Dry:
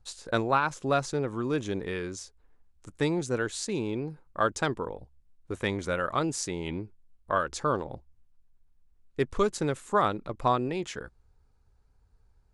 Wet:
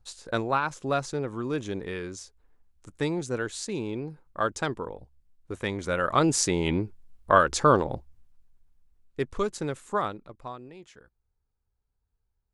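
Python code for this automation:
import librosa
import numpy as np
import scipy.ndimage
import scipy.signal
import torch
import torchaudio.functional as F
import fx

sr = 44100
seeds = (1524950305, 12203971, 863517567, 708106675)

y = fx.gain(x, sr, db=fx.line((5.74, -1.0), (6.34, 8.0), (7.85, 8.0), (9.32, -2.5), (9.96, -2.5), (10.53, -15.0)))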